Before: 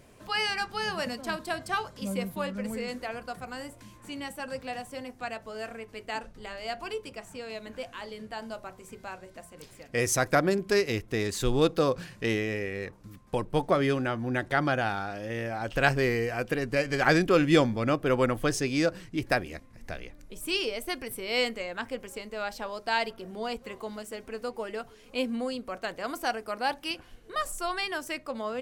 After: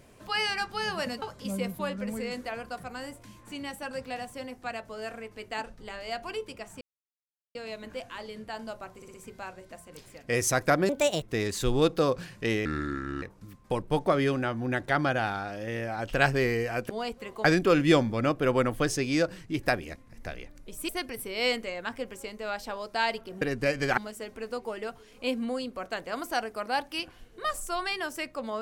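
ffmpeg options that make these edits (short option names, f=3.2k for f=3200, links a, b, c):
-filter_complex "[0:a]asplit=15[a][b][c][d][e][f][g][h][i][j][k][l][m][n][o];[a]atrim=end=1.222[p];[b]atrim=start=1.788:end=7.38,asetpts=PTS-STARTPTS,afade=t=out:st=5.588:d=0.004:c=hsin,apad=pad_dur=0.74[q];[c]atrim=start=7.38:end=8.852,asetpts=PTS-STARTPTS,afade=t=in:d=0.004:c=hsin[r];[d]atrim=start=8.788:end=8.852[s];[e]atrim=start=8.788:end=8.852[t];[f]atrim=start=8.788:end=10.544[u];[g]atrim=start=10.54:end=11.02,asetpts=PTS-STARTPTS,asetrate=63504,aresample=44100[v];[h]atrim=start=11.016:end=12.454[w];[i]atrim=start=12.45:end=12.85,asetpts=PTS-STARTPTS,asetrate=30870,aresample=44100[x];[j]atrim=start=12.846:end=16.522[y];[k]atrim=start=23.338:end=23.892[z];[l]atrim=start=17.078:end=20.522[aa];[m]atrim=start=20.808:end=23.342[ab];[n]atrim=start=16.518:end=17.082[ac];[o]atrim=start=23.888[ad];[q][r]concat=n=2:v=0:a=1[ae];[p][ae]acrossfade=d=0.004:c1=hsin:c2=hsin[af];[af][s]acrossfade=d=0.004:c1=hsin:c2=hsin[ag];[ag][t]acrossfade=d=0.004:c1=hsin:c2=hsin[ah];[ah][u]acrossfade=d=0.004:c1=hsin:c2=hsin[ai];[ai][v]acrossfade=d=0.004:c1=hsin:c2=hsin[aj];[aj][w]acrossfade=d=0.004:c1=hsin:c2=hsin[ak];[ak][x]acrossfade=d=0.004:c1=hsin:c2=hsin[al];[al][y]acrossfade=d=0.004:c1=hsin:c2=hsin[am];[am][z]acrossfade=d=0.004:c1=hsin:c2=hsin[an];[an][aa]acrossfade=d=0.004:c1=hsin:c2=hsin[ao];[ao][ab]acrossfade=d=0.004:c1=hsin:c2=hsin[ap];[ap][ac]acrossfade=d=0.004:c1=hsin:c2=hsin[aq];[aq][ad]acrossfade=d=0.004:c1=hsin:c2=hsin"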